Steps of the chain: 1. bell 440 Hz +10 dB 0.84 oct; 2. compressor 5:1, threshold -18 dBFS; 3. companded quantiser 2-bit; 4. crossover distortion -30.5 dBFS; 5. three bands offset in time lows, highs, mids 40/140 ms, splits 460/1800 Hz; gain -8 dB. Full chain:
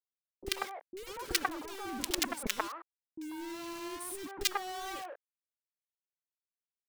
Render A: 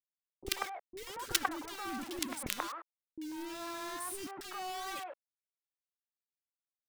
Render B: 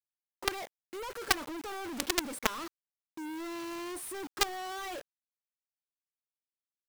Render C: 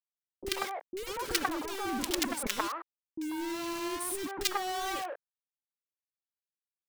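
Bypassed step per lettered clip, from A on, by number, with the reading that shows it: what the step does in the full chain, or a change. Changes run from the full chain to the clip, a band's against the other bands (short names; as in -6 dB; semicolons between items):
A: 1, crest factor change +2.0 dB; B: 5, echo-to-direct 13.5 dB to none; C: 4, distortion -9 dB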